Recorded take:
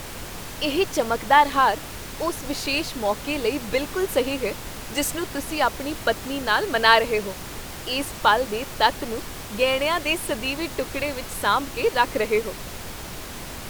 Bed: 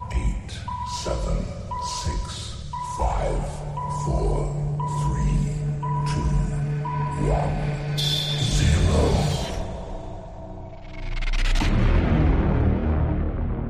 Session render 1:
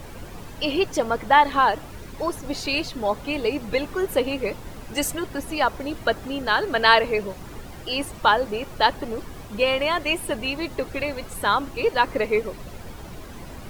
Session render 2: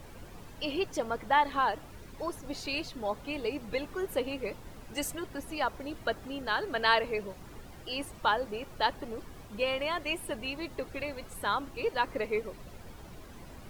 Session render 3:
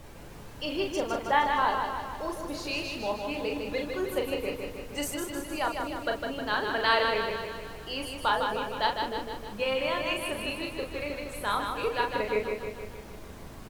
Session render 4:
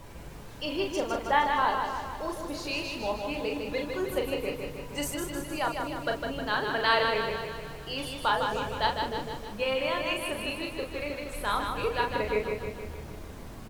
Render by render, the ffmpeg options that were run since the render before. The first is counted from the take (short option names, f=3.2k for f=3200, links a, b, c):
-af "afftdn=nr=11:nf=-36"
-af "volume=-9.5dB"
-filter_complex "[0:a]asplit=2[a][b];[b]adelay=38,volume=-5dB[c];[a][c]amix=inputs=2:normalize=0,aecho=1:1:155|310|465|620|775|930|1085|1240:0.562|0.332|0.196|0.115|0.0681|0.0402|0.0237|0.014"
-filter_complex "[1:a]volume=-23dB[a];[0:a][a]amix=inputs=2:normalize=0"